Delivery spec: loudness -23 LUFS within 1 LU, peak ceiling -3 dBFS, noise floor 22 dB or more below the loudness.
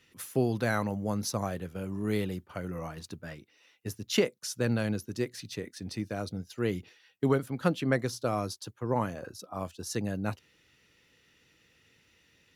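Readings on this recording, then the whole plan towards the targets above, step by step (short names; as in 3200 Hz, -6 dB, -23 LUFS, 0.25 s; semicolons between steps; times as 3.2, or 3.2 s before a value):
loudness -32.5 LUFS; peak -10.0 dBFS; loudness target -23.0 LUFS
-> gain +9.5 dB; limiter -3 dBFS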